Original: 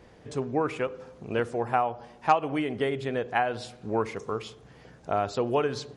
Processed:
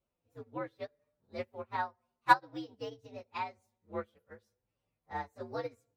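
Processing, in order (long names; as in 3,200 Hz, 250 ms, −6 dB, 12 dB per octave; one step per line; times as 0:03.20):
partials spread apart or drawn together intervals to 120%
expander for the loud parts 2.5 to 1, over −40 dBFS
level +2 dB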